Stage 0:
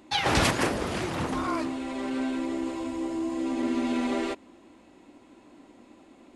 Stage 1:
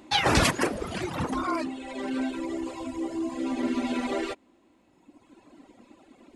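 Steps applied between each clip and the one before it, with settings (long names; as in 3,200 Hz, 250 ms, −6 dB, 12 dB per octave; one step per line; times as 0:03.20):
reverb reduction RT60 1.9 s
level +3 dB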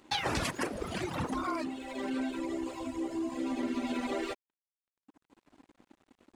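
downward compressor 5 to 1, threshold −27 dBFS, peak gain reduction 10 dB
dead-zone distortion −53 dBFS
level −2 dB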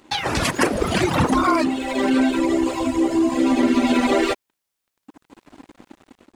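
automatic gain control gain up to 9 dB
level +7 dB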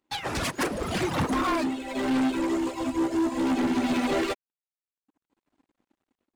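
soft clipping −21.5 dBFS, distortion −9 dB
expander for the loud parts 2.5 to 1, over −42 dBFS
level +1 dB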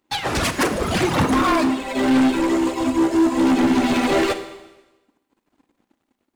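four-comb reverb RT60 1.1 s, combs from 31 ms, DRR 9.5 dB
level +7.5 dB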